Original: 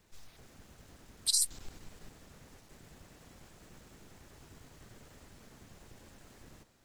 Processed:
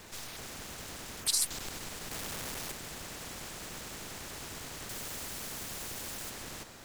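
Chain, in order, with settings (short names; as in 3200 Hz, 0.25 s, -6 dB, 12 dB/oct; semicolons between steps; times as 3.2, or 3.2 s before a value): 2.11–2.72 sample leveller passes 3; 4.89–6.3 high shelf 5000 Hz +9 dB; spectral compressor 2:1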